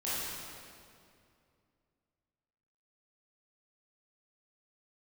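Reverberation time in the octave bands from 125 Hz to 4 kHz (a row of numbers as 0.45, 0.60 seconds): 3.0, 2.9, 2.6, 2.3, 2.1, 1.8 seconds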